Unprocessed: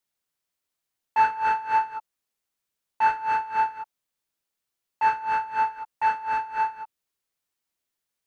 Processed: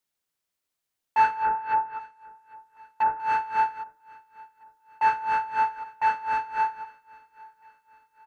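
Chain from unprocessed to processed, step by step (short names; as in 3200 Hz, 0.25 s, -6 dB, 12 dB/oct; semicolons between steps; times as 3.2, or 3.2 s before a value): 1.34–3.2 treble ducked by the level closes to 920 Hz, closed at -18.5 dBFS; feedback echo 0.802 s, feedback 48%, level -23.5 dB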